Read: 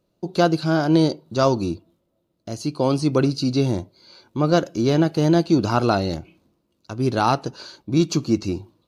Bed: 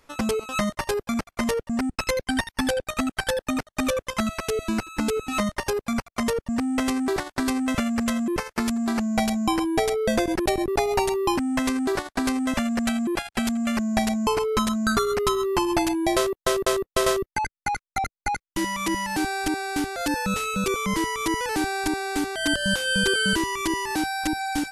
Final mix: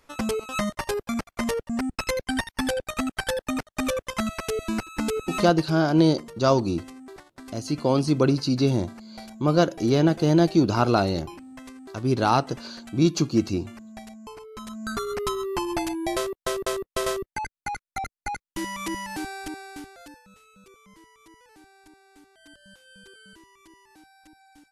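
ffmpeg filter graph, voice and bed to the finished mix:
ffmpeg -i stem1.wav -i stem2.wav -filter_complex "[0:a]adelay=5050,volume=-1.5dB[link_01];[1:a]volume=12dB,afade=type=out:start_time=5.27:duration=0.46:silence=0.141254,afade=type=in:start_time=14.55:duration=0.64:silence=0.199526,afade=type=out:start_time=18.88:duration=1.34:silence=0.0668344[link_02];[link_01][link_02]amix=inputs=2:normalize=0" out.wav

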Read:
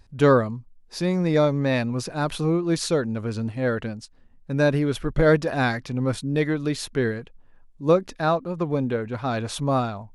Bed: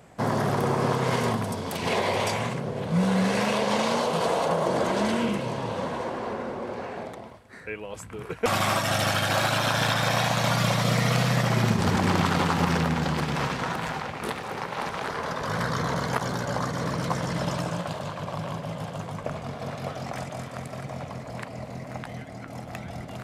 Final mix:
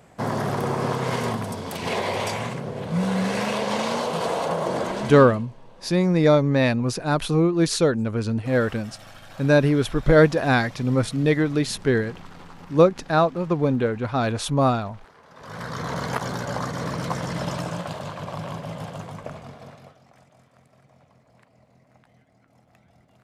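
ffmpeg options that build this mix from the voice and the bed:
ffmpeg -i stem1.wav -i stem2.wav -filter_complex "[0:a]adelay=4900,volume=3dB[link_01];[1:a]volume=20.5dB,afade=type=out:start_time=4.75:duration=0.71:silence=0.0944061,afade=type=in:start_time=15.3:duration=0.75:silence=0.0891251,afade=type=out:start_time=18.86:duration=1.12:silence=0.0841395[link_02];[link_01][link_02]amix=inputs=2:normalize=0" out.wav

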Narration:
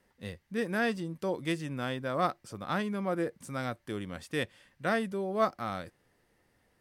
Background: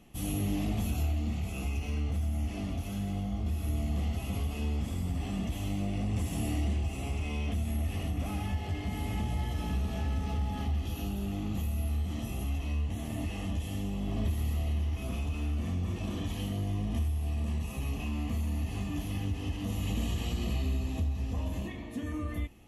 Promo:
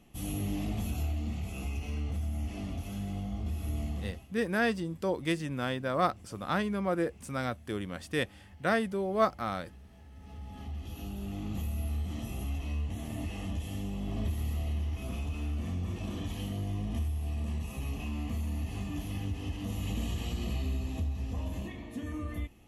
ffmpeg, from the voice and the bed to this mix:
ffmpeg -i stem1.wav -i stem2.wav -filter_complex "[0:a]adelay=3800,volume=1.5dB[link_01];[1:a]volume=17dB,afade=type=out:start_time=3.84:duration=0.44:silence=0.112202,afade=type=in:start_time=10.11:duration=1.48:silence=0.105925[link_02];[link_01][link_02]amix=inputs=2:normalize=0" out.wav

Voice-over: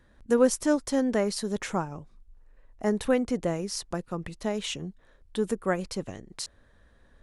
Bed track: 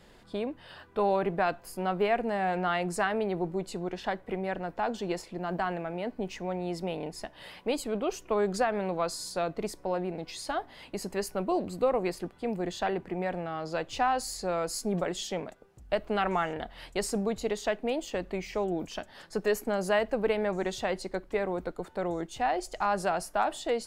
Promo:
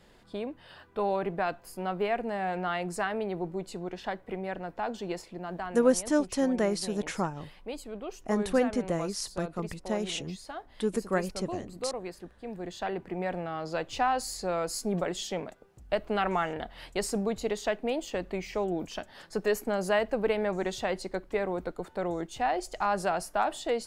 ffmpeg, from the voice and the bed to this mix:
ffmpeg -i stem1.wav -i stem2.wav -filter_complex "[0:a]adelay=5450,volume=-1.5dB[link_01];[1:a]volume=6dB,afade=type=out:start_time=5.26:duration=0.57:silence=0.501187,afade=type=in:start_time=12.43:duration=0.89:silence=0.375837[link_02];[link_01][link_02]amix=inputs=2:normalize=0" out.wav

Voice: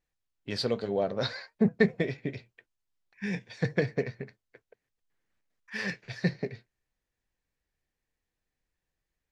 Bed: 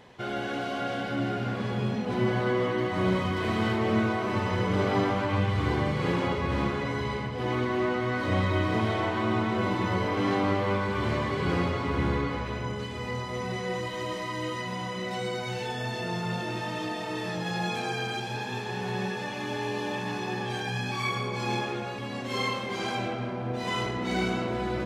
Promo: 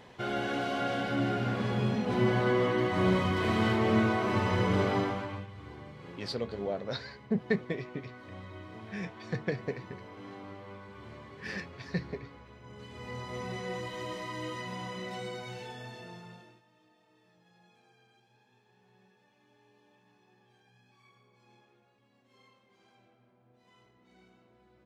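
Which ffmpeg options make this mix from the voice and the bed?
ffmpeg -i stem1.wav -i stem2.wav -filter_complex "[0:a]adelay=5700,volume=-5.5dB[link_01];[1:a]volume=14dB,afade=type=out:start_time=4.7:duration=0.77:silence=0.105925,afade=type=in:start_time=12.62:duration=0.71:silence=0.188365,afade=type=out:start_time=14.93:duration=1.69:silence=0.0375837[link_02];[link_01][link_02]amix=inputs=2:normalize=0" out.wav

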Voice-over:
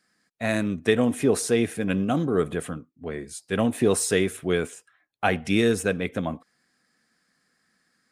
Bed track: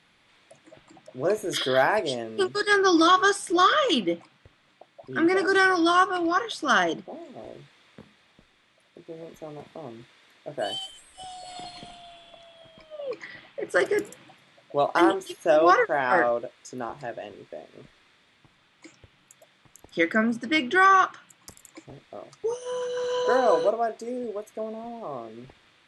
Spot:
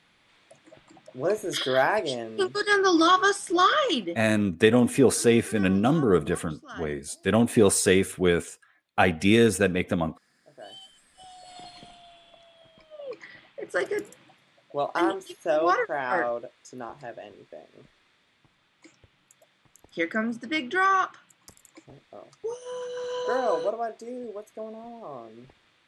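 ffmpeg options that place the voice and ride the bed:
ffmpeg -i stem1.wav -i stem2.wav -filter_complex "[0:a]adelay=3750,volume=2dB[link_01];[1:a]volume=15.5dB,afade=type=out:start_time=3.83:duration=0.52:silence=0.1,afade=type=in:start_time=10.41:duration=1.29:silence=0.149624[link_02];[link_01][link_02]amix=inputs=2:normalize=0" out.wav

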